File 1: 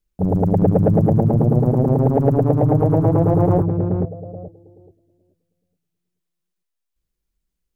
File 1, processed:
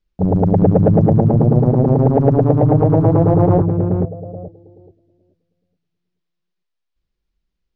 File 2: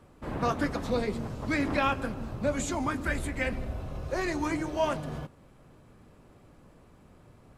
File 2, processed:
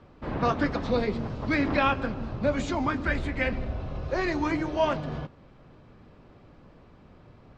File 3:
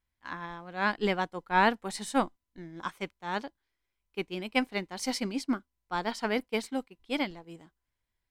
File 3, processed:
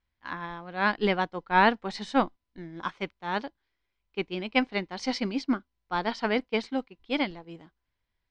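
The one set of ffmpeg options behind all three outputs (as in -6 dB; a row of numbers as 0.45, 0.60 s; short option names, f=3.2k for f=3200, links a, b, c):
-af "lowpass=f=5.1k:w=0.5412,lowpass=f=5.1k:w=1.3066,volume=3dB"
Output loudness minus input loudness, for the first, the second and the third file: +3.0, +3.0, +3.0 LU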